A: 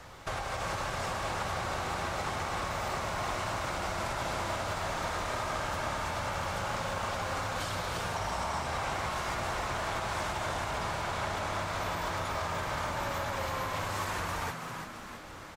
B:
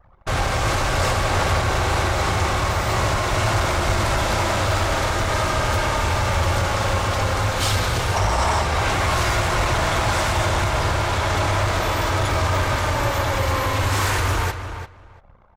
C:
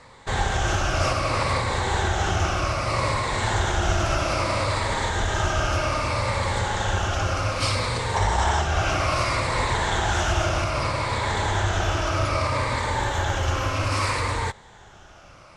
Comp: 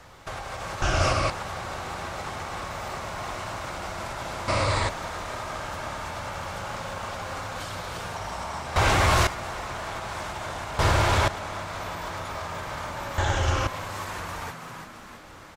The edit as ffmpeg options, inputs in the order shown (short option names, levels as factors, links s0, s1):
-filter_complex "[2:a]asplit=3[s0][s1][s2];[1:a]asplit=2[s3][s4];[0:a]asplit=6[s5][s6][s7][s8][s9][s10];[s5]atrim=end=0.822[s11];[s0]atrim=start=0.818:end=1.302[s12];[s6]atrim=start=1.298:end=4.482[s13];[s1]atrim=start=4.478:end=4.892[s14];[s7]atrim=start=4.888:end=8.762[s15];[s3]atrim=start=8.758:end=9.272[s16];[s8]atrim=start=9.268:end=10.792[s17];[s4]atrim=start=10.788:end=11.282[s18];[s9]atrim=start=11.278:end=13.182[s19];[s2]atrim=start=13.178:end=13.672[s20];[s10]atrim=start=13.668[s21];[s11][s12]acrossfade=d=0.004:c1=hsin:c2=hsin[s22];[s22][s13]acrossfade=d=0.004:c1=hsin:c2=hsin[s23];[s23][s14]acrossfade=d=0.004:c1=hsin:c2=hsin[s24];[s24][s15]acrossfade=d=0.004:c1=hsin:c2=hsin[s25];[s25][s16]acrossfade=d=0.004:c1=hsin:c2=hsin[s26];[s26][s17]acrossfade=d=0.004:c1=hsin:c2=hsin[s27];[s27][s18]acrossfade=d=0.004:c1=hsin:c2=hsin[s28];[s28][s19]acrossfade=d=0.004:c1=hsin:c2=hsin[s29];[s29][s20]acrossfade=d=0.004:c1=hsin:c2=hsin[s30];[s30][s21]acrossfade=d=0.004:c1=hsin:c2=hsin"